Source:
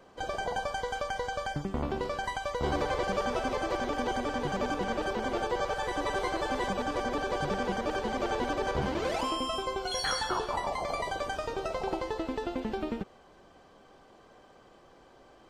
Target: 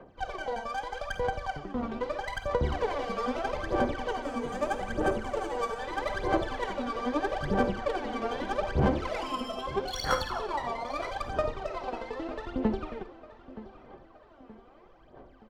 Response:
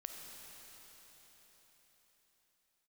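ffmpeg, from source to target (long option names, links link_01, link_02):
-filter_complex "[0:a]asettb=1/sr,asplit=3[link_01][link_02][link_03];[link_01]atrim=end=4.224[link_04];[link_02]atrim=start=4.22:end=5.77,asetpts=PTS-STARTPTS,afade=type=in:duration=0.004:curve=qsin,afade=type=out:start_time=1.546:duration=0.004:curve=qsin,highshelf=frequency=6500:width_type=q:width=1.5:gain=13[link_05];[link_03]atrim=start=5.766[link_06];[link_04][link_05]acrossfade=duration=0.004:curve1=hsin:curve2=qsin[link_07];[link_07][link_06]acrossfade=duration=0.004:curve1=qsin:curve2=hsin,aphaser=in_gain=1:out_gain=1:delay=4.4:decay=0.8:speed=0.79:type=sinusoidal,acrossover=split=120[link_08][link_09];[link_09]adynamicsmooth=sensitivity=4:basefreq=3000[link_10];[link_08][link_10]amix=inputs=2:normalize=0,asplit=2[link_11][link_12];[link_12]adelay=923,lowpass=frequency=4700:poles=1,volume=-16.5dB,asplit=2[link_13][link_14];[link_14]adelay=923,lowpass=frequency=4700:poles=1,volume=0.46,asplit=2[link_15][link_16];[link_16]adelay=923,lowpass=frequency=4700:poles=1,volume=0.46,asplit=2[link_17][link_18];[link_18]adelay=923,lowpass=frequency=4700:poles=1,volume=0.46[link_19];[link_11][link_13][link_15][link_17][link_19]amix=inputs=5:normalize=0[link_20];[1:a]atrim=start_sample=2205,atrim=end_sample=3969[link_21];[link_20][link_21]afir=irnorm=-1:irlink=0"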